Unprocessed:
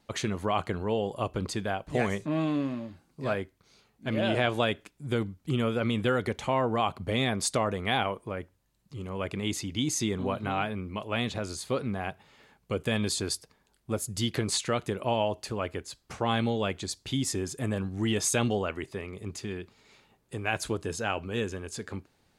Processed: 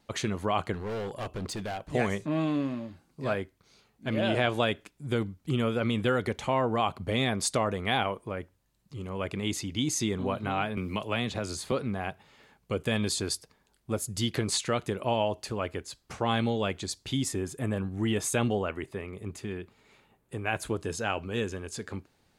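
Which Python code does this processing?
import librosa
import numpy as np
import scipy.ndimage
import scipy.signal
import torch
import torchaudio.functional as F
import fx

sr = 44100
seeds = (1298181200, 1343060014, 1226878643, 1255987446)

y = fx.clip_hard(x, sr, threshold_db=-31.0, at=(0.74, 1.85))
y = fx.band_squash(y, sr, depth_pct=70, at=(10.77, 11.72))
y = fx.peak_eq(y, sr, hz=5200.0, db=-8.0, octaves=1.1, at=(17.28, 20.77))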